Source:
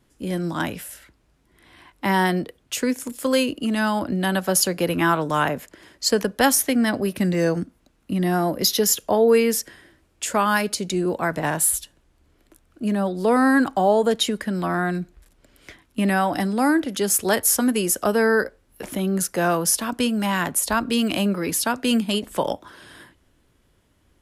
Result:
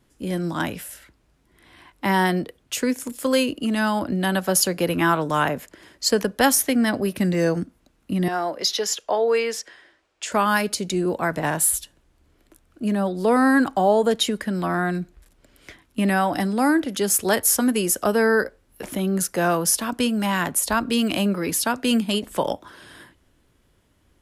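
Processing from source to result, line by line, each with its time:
8.28–10.32 three-band isolator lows -18 dB, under 420 Hz, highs -21 dB, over 7300 Hz

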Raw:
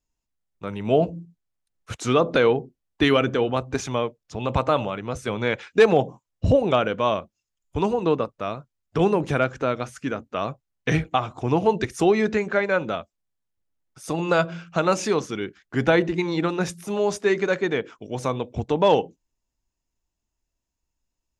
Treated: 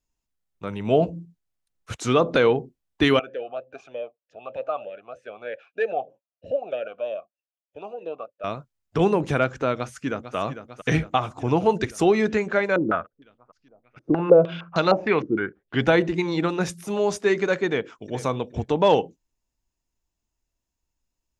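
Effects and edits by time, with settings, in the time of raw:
3.19–8.44 vowel sweep a-e 3.2 Hz
9.78–10.36 echo throw 0.45 s, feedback 70%, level -10.5 dB
12.76–15.82 stepped low-pass 6.5 Hz 330–4800 Hz
17.66–18.17 echo throw 0.42 s, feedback 20%, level -16.5 dB

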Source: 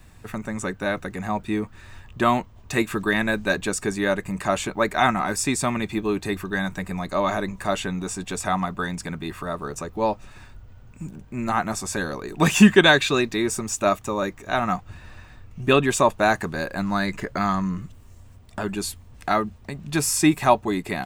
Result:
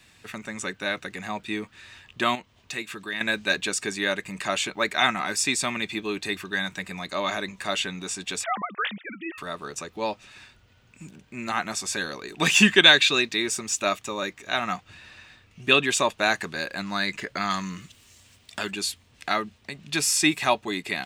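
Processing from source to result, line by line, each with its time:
2.35–3.21 compressor 1.5:1, threshold -42 dBFS
8.44–9.38 sine-wave speech
17.5–18.71 high shelf 2100 Hz +8.5 dB
whole clip: weighting filter D; gain -5.5 dB

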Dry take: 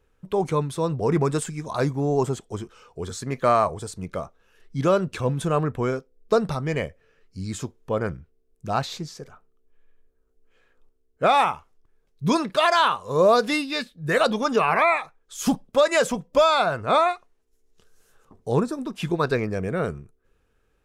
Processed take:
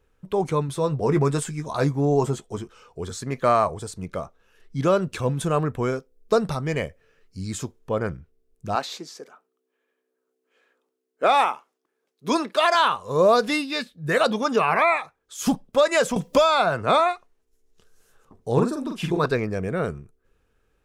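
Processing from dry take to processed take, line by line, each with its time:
0.67–2.58 doubler 14 ms -8 dB
5.01–7.79 high shelf 5800 Hz +4.5 dB
8.75–12.75 HPF 250 Hz 24 dB/oct
13.49–15.47 HPF 50 Hz
16.16–17 three-band squash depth 70%
18.52–19.26 doubler 45 ms -4 dB

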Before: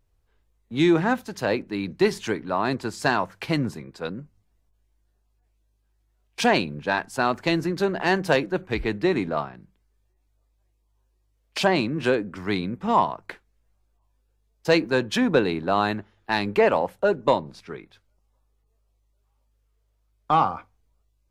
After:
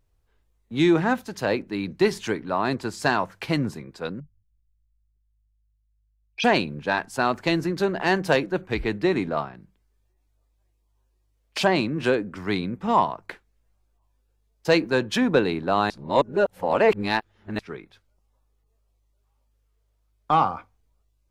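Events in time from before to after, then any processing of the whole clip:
4.2–6.44 formant sharpening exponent 3
15.9–17.59 reverse

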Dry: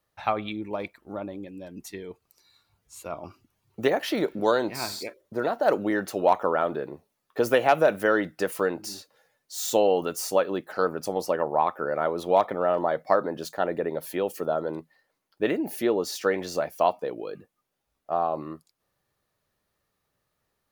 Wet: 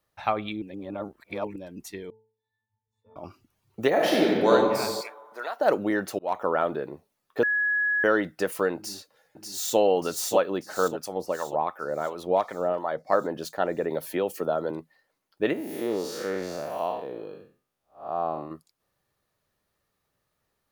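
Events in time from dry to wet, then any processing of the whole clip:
0.62–1.56 reverse
2.1–3.16 octave resonator A, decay 0.45 s
3.89–4.51 reverb throw, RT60 1.8 s, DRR -3.5 dB
5.01–5.6 HPF 940 Hz
6.19–6.61 fade in equal-power
7.43–8.04 bleep 1680 Hz -21.5 dBFS
8.76–9.78 echo throw 0.59 s, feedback 55%, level -4 dB
10.88–13.13 harmonic tremolo 2.8 Hz, crossover 780 Hz
13.9–14.71 three-band squash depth 40%
15.53–18.51 time blur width 0.196 s

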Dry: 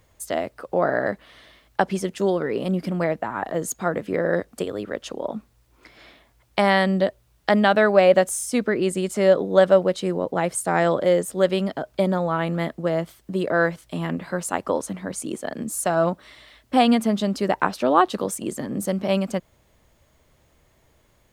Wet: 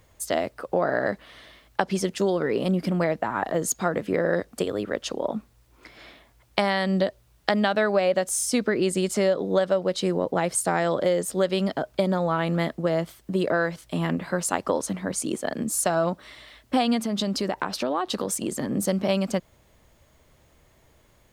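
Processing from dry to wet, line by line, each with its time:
17.05–18.64 compressor 4:1, threshold -24 dBFS
whole clip: dynamic EQ 4800 Hz, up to +6 dB, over -45 dBFS, Q 1.4; compressor, threshold -20 dBFS; gain +1.5 dB

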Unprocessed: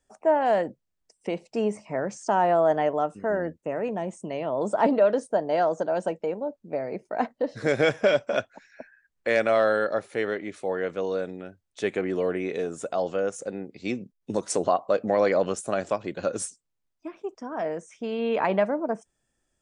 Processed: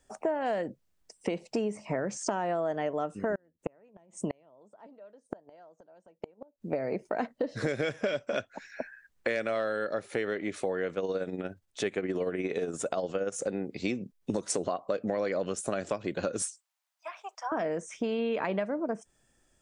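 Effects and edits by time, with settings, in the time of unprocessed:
3.35–6.63 flipped gate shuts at -22 dBFS, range -38 dB
10.93–13.32 tremolo 17 Hz, depth 52%
16.42–17.52 steep high-pass 680 Hz
whole clip: dynamic EQ 850 Hz, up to -6 dB, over -36 dBFS, Q 1.5; compressor 6:1, threshold -35 dBFS; gain +7 dB

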